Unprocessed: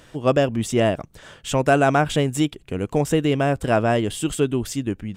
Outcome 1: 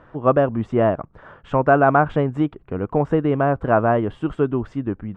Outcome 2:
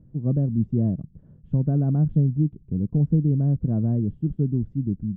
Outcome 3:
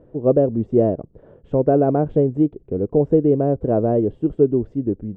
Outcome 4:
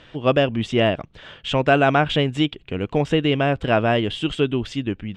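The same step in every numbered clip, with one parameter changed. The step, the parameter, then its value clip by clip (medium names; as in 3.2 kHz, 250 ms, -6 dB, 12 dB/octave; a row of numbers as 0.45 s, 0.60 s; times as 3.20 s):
resonant low-pass, frequency: 1.2 kHz, 180 Hz, 460 Hz, 3.2 kHz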